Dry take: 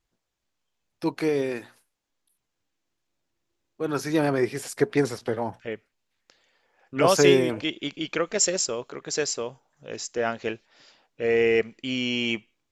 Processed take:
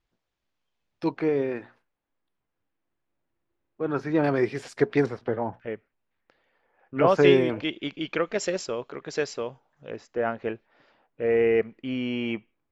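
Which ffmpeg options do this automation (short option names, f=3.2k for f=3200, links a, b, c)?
-af "asetnsamples=n=441:p=0,asendcmd='1.17 lowpass f 2000;4.24 lowpass f 4000;5.06 lowpass f 1900;7.23 lowpass f 3200;9.9 lowpass f 1700',lowpass=4.3k"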